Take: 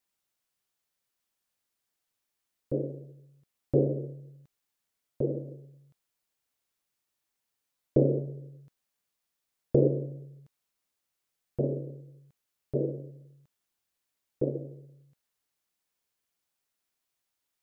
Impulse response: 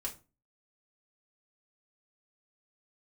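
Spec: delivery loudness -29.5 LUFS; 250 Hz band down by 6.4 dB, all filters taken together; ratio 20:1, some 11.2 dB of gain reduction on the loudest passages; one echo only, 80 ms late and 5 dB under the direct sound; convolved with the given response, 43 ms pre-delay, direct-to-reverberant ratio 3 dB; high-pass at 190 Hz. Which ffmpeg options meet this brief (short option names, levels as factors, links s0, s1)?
-filter_complex "[0:a]highpass=190,equalizer=f=250:t=o:g=-8,acompressor=threshold=0.0251:ratio=20,aecho=1:1:80:0.562,asplit=2[s0][s1];[1:a]atrim=start_sample=2205,adelay=43[s2];[s1][s2]afir=irnorm=-1:irlink=0,volume=0.708[s3];[s0][s3]amix=inputs=2:normalize=0,volume=3.35"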